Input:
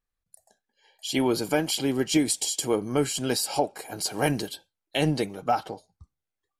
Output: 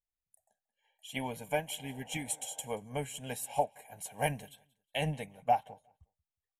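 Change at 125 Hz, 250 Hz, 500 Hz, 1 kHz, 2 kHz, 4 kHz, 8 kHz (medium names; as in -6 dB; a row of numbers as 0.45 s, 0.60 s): -8.0 dB, -16.5 dB, -9.5 dB, -3.5 dB, -7.0 dB, -13.0 dB, -11.0 dB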